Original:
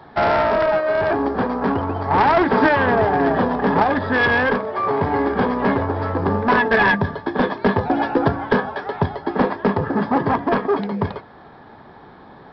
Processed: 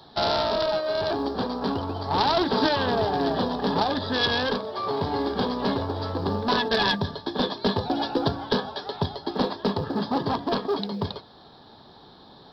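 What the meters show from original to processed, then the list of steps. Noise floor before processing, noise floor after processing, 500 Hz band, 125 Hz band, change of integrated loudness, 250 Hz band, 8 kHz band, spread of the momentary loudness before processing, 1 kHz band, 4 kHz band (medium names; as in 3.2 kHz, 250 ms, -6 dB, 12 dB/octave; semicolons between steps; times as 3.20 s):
-44 dBFS, -50 dBFS, -7.0 dB, -6.5 dB, -6.5 dB, -6.5 dB, no reading, 7 LU, -7.5 dB, +7.0 dB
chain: resonant high shelf 2.9 kHz +11 dB, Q 3; short-mantissa float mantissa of 6-bit; trim -6.5 dB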